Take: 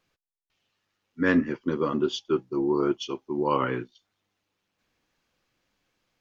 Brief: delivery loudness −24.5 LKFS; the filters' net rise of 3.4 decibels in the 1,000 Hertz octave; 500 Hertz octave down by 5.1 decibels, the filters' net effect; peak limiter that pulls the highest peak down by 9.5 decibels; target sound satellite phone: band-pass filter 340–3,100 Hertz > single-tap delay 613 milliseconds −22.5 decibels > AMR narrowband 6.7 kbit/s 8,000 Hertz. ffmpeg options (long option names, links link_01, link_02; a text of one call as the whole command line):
ffmpeg -i in.wav -af "equalizer=frequency=500:width_type=o:gain=-5.5,equalizer=frequency=1000:width_type=o:gain=5,alimiter=limit=-18.5dB:level=0:latency=1,highpass=340,lowpass=3100,aecho=1:1:613:0.075,volume=9.5dB" -ar 8000 -c:a libopencore_amrnb -b:a 6700 out.amr